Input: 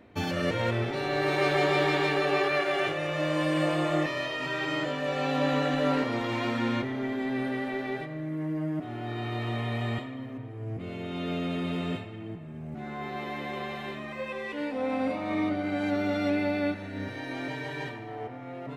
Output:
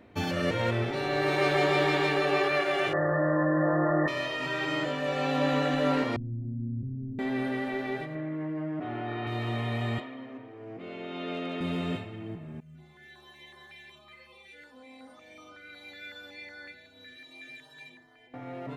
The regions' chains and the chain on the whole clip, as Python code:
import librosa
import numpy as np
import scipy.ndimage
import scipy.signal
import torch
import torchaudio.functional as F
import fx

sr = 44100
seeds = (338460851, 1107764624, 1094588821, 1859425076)

y = fx.chain(x, sr, fx.brickwall_lowpass(high_hz=2000.0),
    fx.env_flatten(amount_pct=70), at=(2.93, 4.08))
y = fx.chain(y, sr, fx.ladder_lowpass(hz=220.0, resonance_pct=25),
    fx.low_shelf(hz=140.0, db=11.5),
    fx.env_flatten(amount_pct=50), at=(6.16, 7.19))
y = fx.chain(y, sr, fx.lowpass(hz=2700.0, slope=12),
    fx.low_shelf(hz=240.0, db=-8.0),
    fx.env_flatten(amount_pct=70), at=(8.15, 9.27))
y = fx.chain(y, sr, fx.bandpass_edges(low_hz=290.0, high_hz=4400.0),
    fx.clip_hard(threshold_db=-26.0), at=(10.0, 11.61))
y = fx.chain(y, sr, fx.tilt_shelf(db=-6.0, hz=850.0),
    fx.stiff_resonator(f0_hz=74.0, decay_s=0.79, stiffness=0.03),
    fx.filter_held_notch(hz=5.4, low_hz=910.0, high_hz=2500.0), at=(12.6, 18.34))